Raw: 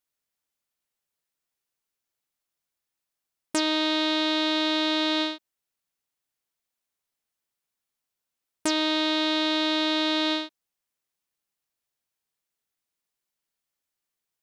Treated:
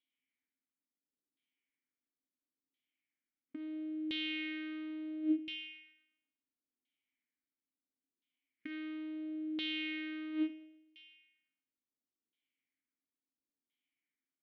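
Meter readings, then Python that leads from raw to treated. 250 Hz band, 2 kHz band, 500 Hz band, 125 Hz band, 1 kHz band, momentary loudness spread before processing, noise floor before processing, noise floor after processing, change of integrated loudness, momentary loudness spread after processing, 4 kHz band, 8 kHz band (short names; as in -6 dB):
-10.5 dB, -13.5 dB, -19.5 dB, n/a, -32.5 dB, 7 LU, under -85 dBFS, under -85 dBFS, -15.0 dB, 16 LU, -19.0 dB, under -35 dB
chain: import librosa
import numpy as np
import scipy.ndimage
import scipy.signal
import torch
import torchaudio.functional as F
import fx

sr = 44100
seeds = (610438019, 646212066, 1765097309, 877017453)

p1 = fx.envelope_flatten(x, sr, power=0.6)
p2 = fx.noise_reduce_blind(p1, sr, reduce_db=9)
p3 = p2 + fx.echo_thinned(p2, sr, ms=125, feedback_pct=55, hz=340.0, wet_db=-18.5, dry=0)
p4 = fx.over_compress(p3, sr, threshold_db=-32.0, ratio=-0.5)
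p5 = fx.cheby_harmonics(p4, sr, harmonics=(5, 7), levels_db=(-7, -15), full_scale_db=-10.0)
p6 = fx.vowel_filter(p5, sr, vowel='i')
p7 = fx.filter_lfo_lowpass(p6, sr, shape='saw_down', hz=0.73, low_hz=390.0, high_hz=3700.0, q=2.4)
y = p7 * librosa.db_to_amplitude(1.0)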